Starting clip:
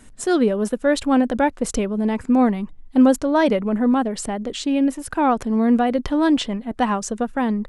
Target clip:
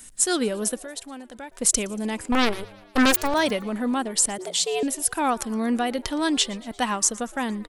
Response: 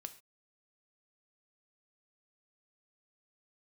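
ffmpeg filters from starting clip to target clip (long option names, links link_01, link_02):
-filter_complex "[0:a]asettb=1/sr,asplit=3[link_01][link_02][link_03];[link_01]atrim=end=0.784[link_04];[link_02]atrim=start=0.78:end=1.52,asetpts=PTS-STARTPTS,afade=type=in:duration=0.004:curve=qsin,afade=type=out:start_time=0.736:duration=0.004:curve=qsin,acompressor=threshold=-38dB:ratio=2.5[link_05];[link_03]atrim=start=1.516[link_06];[link_04][link_05]acrossfade=duration=0.004:curve1=hsin:curve2=qsin[link_07];[link_07][link_06]acrossfade=duration=0.004:curve1=qsin:curve2=hsin,asettb=1/sr,asplit=3[link_08][link_09][link_10];[link_08]atrim=end=2.324[link_11];[link_09]atrim=start=2.32:end=3.34,asetpts=PTS-STARTPTS,afade=type=in:duration=0.004:curve=qsin,afade=type=out:start_time=1.016:duration=0.004:curve=qsin,aeval=exprs='0.531*(cos(1*acos(clip(val(0)/0.531,-1,1)))-cos(1*PI/2))+0.0841*(cos(7*acos(clip(val(0)/0.531,-1,1)))-cos(7*PI/2))+0.119*(cos(8*acos(clip(val(0)/0.531,-1,1)))-cos(8*PI/2))':channel_layout=same[link_12];[link_10]atrim=start=3.336[link_13];[link_11][link_12]acrossfade=duration=0.004:curve1=hsin:curve2=qsin[link_14];[link_14][link_13]acrossfade=duration=0.004:curve1=qsin:curve2=hsin,asettb=1/sr,asplit=3[link_15][link_16][link_17];[link_15]atrim=end=4.384[link_18];[link_16]atrim=start=4.38:end=4.83,asetpts=PTS-STARTPTS,afade=type=in:duration=0.004:curve=qsin,afade=type=out:start_time=0.446:duration=0.004:curve=qsin,afreqshift=160[link_19];[link_17]atrim=start=4.826[link_20];[link_18][link_19]acrossfade=duration=0.004:curve1=hsin:curve2=qsin[link_21];[link_21][link_20]acrossfade=duration=0.004:curve1=qsin:curve2=hsin,asplit=2[link_22][link_23];[link_23]asplit=4[link_24][link_25][link_26][link_27];[link_24]adelay=116,afreqshift=100,volume=-23dB[link_28];[link_25]adelay=232,afreqshift=200,volume=-27.9dB[link_29];[link_26]adelay=348,afreqshift=300,volume=-32.8dB[link_30];[link_27]adelay=464,afreqshift=400,volume=-37.6dB[link_31];[link_28][link_29][link_30][link_31]amix=inputs=4:normalize=0[link_32];[link_22][link_32]amix=inputs=2:normalize=0,crystalizer=i=8:c=0,volume=-8dB"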